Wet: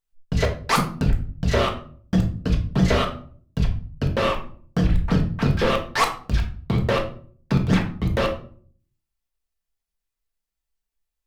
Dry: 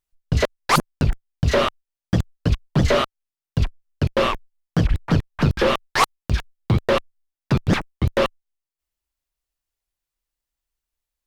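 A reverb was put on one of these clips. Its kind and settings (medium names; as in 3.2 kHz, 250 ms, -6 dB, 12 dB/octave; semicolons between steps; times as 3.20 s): simulated room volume 440 m³, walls furnished, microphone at 1.6 m; trim -4 dB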